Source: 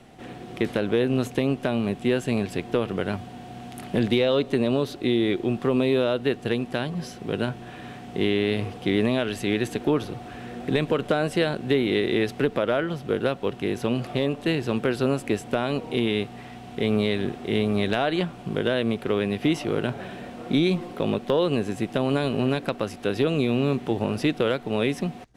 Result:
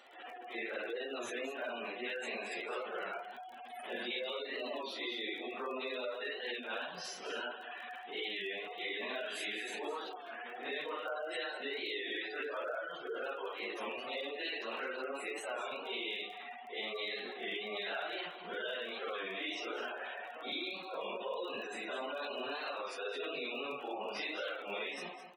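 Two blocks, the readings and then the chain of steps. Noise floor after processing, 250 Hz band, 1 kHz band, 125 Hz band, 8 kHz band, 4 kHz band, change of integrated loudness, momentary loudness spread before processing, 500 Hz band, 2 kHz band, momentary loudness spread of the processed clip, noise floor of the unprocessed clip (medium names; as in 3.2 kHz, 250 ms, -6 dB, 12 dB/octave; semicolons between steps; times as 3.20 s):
-49 dBFS, -24.5 dB, -9.0 dB, under -35 dB, -10.0 dB, -8.0 dB, -14.5 dB, 8 LU, -16.0 dB, -7.0 dB, 5 LU, -41 dBFS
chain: phase randomisation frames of 200 ms; high-pass 830 Hz 12 dB/octave; spectral gate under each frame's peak -15 dB strong; compression, threshold -37 dBFS, peak gain reduction 11.5 dB; crackle 17 per s -48 dBFS; delay 211 ms -12 dB; warped record 33 1/3 rpm, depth 100 cents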